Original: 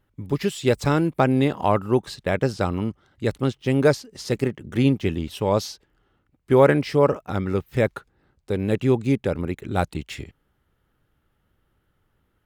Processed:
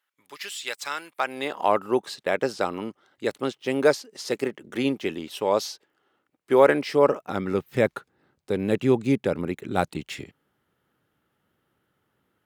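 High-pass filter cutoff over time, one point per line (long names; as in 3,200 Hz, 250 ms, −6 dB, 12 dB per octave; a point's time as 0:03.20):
0:01.09 1,400 Hz
0:01.72 340 Hz
0:06.72 340 Hz
0:07.66 160 Hz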